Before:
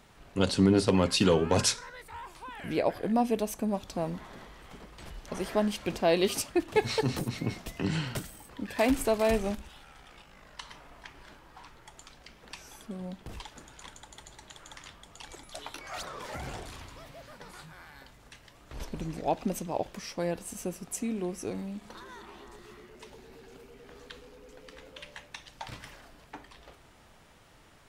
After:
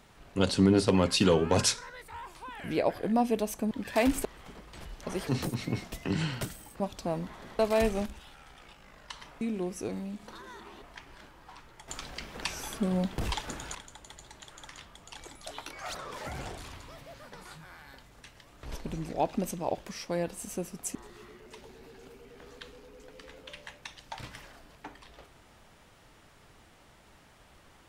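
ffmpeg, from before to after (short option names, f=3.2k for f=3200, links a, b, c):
-filter_complex "[0:a]asplit=11[a][b][c][d][e][f][g][h][i][j][k];[a]atrim=end=3.712[l];[b]atrim=start=8.538:end=9.082[m];[c]atrim=start=4.498:end=5.522[n];[d]atrim=start=7.008:end=8.542[o];[e]atrim=start=3.708:end=4.502[p];[f]atrim=start=9.078:end=10.902[q];[g]atrim=start=21.028:end=22.442[r];[h]atrim=start=10.898:end=11.962[s];[i]atrim=start=11.958:end=13.832,asetpts=PTS-STARTPTS,volume=10.5dB[t];[j]atrim=start=13.828:end=21.032[u];[k]atrim=start=22.438[v];[l][m]acrossfade=d=0.004:c1=hsin:c2=hsin[w];[w][n]acrossfade=d=0.004:c1=hsin:c2=hsin[x];[x][o]acrossfade=d=0.004:c1=hsin:c2=hsin[y];[y][p]acrossfade=d=0.004:c1=hsin:c2=hsin[z];[z][q]acrossfade=d=0.004:c1=hsin:c2=hsin[aa];[aa][r]acrossfade=d=0.004:c1=hsin:c2=hsin[ab];[ab][s]acrossfade=d=0.004:c1=hsin:c2=hsin[ac];[ac][t]acrossfade=d=0.004:c1=hsin:c2=hsin[ad];[ad][u]acrossfade=d=0.004:c1=hsin:c2=hsin[ae];[ae][v]acrossfade=d=0.004:c1=hsin:c2=hsin"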